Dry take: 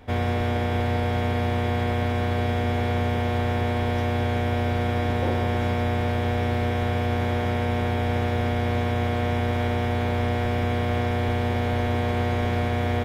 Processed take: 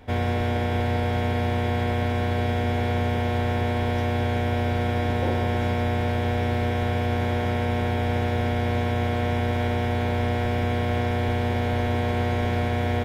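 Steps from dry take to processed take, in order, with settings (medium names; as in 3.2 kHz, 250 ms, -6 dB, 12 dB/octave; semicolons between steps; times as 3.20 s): band-stop 1.2 kHz, Q 16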